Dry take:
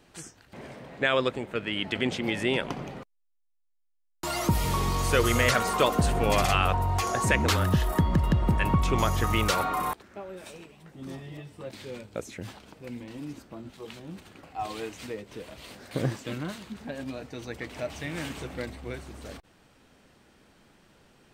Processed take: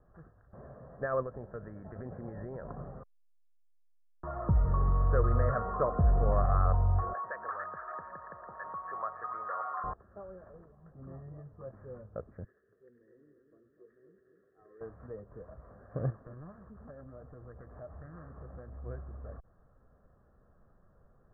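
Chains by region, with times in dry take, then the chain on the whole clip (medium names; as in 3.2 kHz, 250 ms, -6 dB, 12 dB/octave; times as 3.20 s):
1.22–2.77 s: band-stop 1.2 kHz, Q 9.8 + compression 3:1, threshold -29 dBFS
7.13–9.84 s: companding laws mixed up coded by mu + high-pass 900 Hz + repeats whose band climbs or falls 283 ms, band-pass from 1.7 kHz, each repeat 0.7 oct, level -3.5 dB
12.44–14.81 s: two resonant band-passes 860 Hz, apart 2.2 oct + two-band feedback delay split 1.2 kHz, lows 249 ms, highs 101 ms, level -6.5 dB
16.10–18.84 s: compression 2.5:1, threshold -40 dBFS + loudspeaker Doppler distortion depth 0.38 ms
whole clip: steep low-pass 1.6 kHz 72 dB/octave; bass shelf 87 Hz +12 dB; comb 1.7 ms, depth 51%; trim -8.5 dB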